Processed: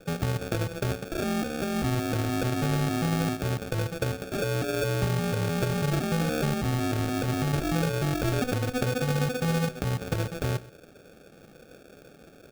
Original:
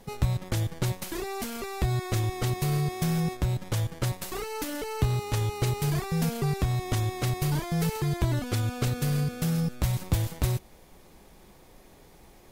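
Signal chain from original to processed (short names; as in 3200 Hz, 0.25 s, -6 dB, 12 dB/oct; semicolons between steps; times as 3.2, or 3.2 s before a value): median filter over 41 samples; HPF 120 Hz; band shelf 800 Hz +11 dB; in parallel at +3 dB: limiter -22 dBFS, peak gain reduction 10.5 dB; on the sum: sample-rate reducer 1000 Hz, jitter 0%; on a send: echo 0.124 s -19.5 dB; on the sum: gain -5 dB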